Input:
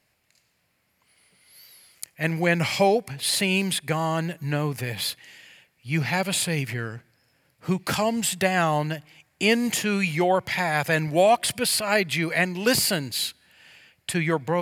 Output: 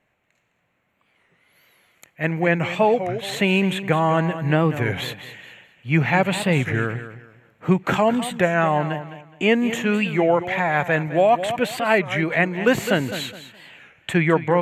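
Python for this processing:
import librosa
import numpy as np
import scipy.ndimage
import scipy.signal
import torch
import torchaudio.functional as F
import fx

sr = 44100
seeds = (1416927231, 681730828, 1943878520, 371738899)

p1 = np.convolve(x, np.full(9, 1.0 / 9))[:len(x)]
p2 = fx.peak_eq(p1, sr, hz=72.0, db=-6.0, octaves=1.9)
p3 = p2 + fx.echo_feedback(p2, sr, ms=209, feedback_pct=27, wet_db=-12.5, dry=0)
p4 = fx.rider(p3, sr, range_db=4, speed_s=0.5)
p5 = fx.record_warp(p4, sr, rpm=33.33, depth_cents=160.0)
y = p5 * librosa.db_to_amplitude(5.5)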